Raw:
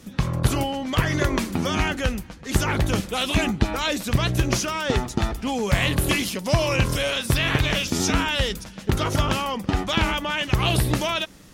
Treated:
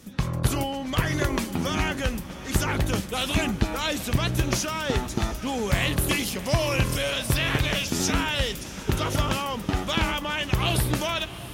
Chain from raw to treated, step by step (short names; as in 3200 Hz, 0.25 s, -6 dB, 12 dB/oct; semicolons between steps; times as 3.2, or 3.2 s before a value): high shelf 9500 Hz +5.5 dB; diffused feedback echo 0.708 s, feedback 46%, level -14 dB; gain -3 dB